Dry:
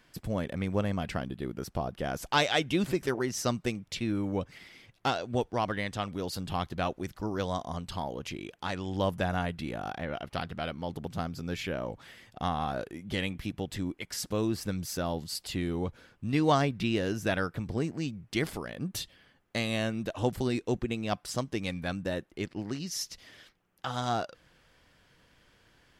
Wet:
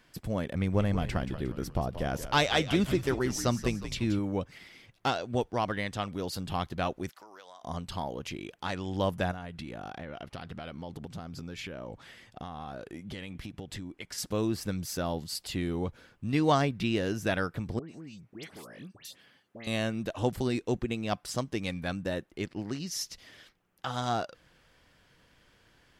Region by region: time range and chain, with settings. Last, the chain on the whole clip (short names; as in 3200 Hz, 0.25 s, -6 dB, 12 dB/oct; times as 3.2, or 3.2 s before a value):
0.55–4.19 low shelf 120 Hz +8 dB + frequency-shifting echo 0.179 s, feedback 48%, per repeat -75 Hz, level -11 dB
7.09–7.63 HPF 770 Hz + compressor, threshold -47 dBFS
9.31–14.18 compressor 12:1, threshold -35 dBFS + LPF 11000 Hz
17.79–19.67 HPF 130 Hz + compressor 2.5:1, threshold -46 dBFS + dispersion highs, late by 0.105 s, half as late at 1900 Hz
whole clip: dry